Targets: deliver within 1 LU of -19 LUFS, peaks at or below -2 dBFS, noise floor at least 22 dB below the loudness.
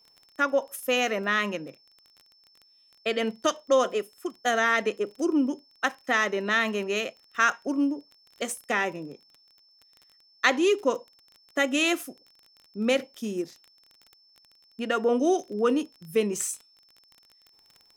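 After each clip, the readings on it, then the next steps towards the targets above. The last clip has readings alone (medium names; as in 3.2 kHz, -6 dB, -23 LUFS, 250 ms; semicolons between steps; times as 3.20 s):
tick rate 25 per s; steady tone 5.3 kHz; tone level -58 dBFS; loudness -26.5 LUFS; peak level -6.5 dBFS; loudness target -19.0 LUFS
-> de-click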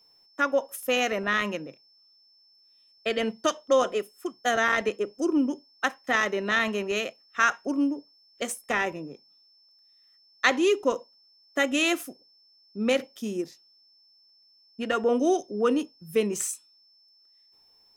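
tick rate 2.7 per s; steady tone 5.3 kHz; tone level -58 dBFS
-> band-stop 5.3 kHz, Q 30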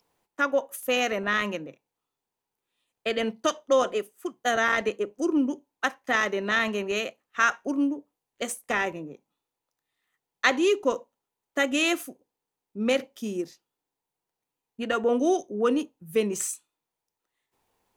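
steady tone not found; loudness -26.5 LUFS; peak level -6.5 dBFS; loudness target -19.0 LUFS
-> trim +7.5 dB; peak limiter -2 dBFS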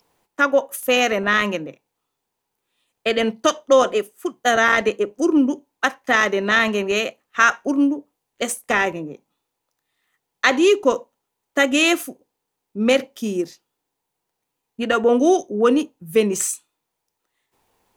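loudness -19.5 LUFS; peak level -2.0 dBFS; noise floor -79 dBFS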